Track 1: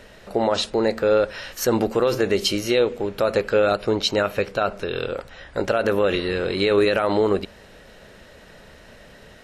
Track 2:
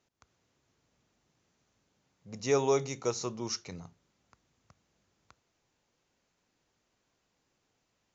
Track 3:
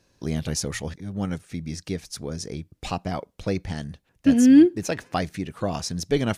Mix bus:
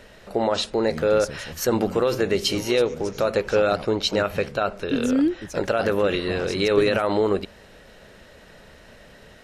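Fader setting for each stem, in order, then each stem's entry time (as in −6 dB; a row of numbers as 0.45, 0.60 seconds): −1.5, −9.5, −7.5 decibels; 0.00, 0.00, 0.65 seconds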